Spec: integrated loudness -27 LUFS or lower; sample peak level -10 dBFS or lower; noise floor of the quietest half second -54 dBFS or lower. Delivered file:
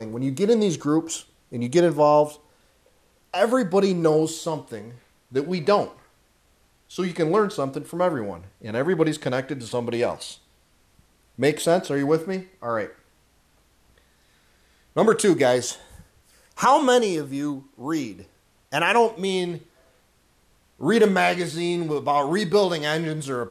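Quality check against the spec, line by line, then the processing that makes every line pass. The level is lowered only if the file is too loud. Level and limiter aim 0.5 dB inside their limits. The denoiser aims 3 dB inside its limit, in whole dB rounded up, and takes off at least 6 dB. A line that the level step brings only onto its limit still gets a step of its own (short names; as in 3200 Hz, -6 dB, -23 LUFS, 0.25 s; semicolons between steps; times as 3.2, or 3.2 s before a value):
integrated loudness -23.0 LUFS: fail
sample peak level -7.0 dBFS: fail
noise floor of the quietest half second -62 dBFS: OK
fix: gain -4.5 dB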